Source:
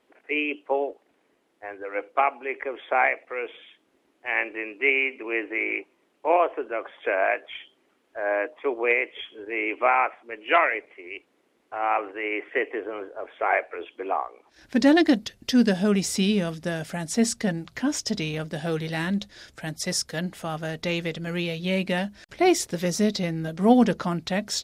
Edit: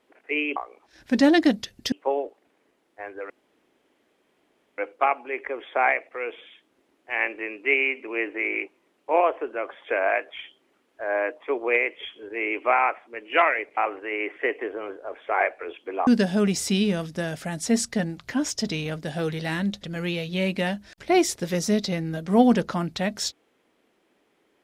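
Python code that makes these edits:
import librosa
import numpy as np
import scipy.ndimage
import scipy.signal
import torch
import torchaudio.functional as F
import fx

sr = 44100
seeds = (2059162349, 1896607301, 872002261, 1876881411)

y = fx.edit(x, sr, fx.insert_room_tone(at_s=1.94, length_s=1.48),
    fx.cut(start_s=10.93, length_s=0.96),
    fx.move(start_s=14.19, length_s=1.36, to_s=0.56),
    fx.cut(start_s=19.31, length_s=1.83), tone=tone)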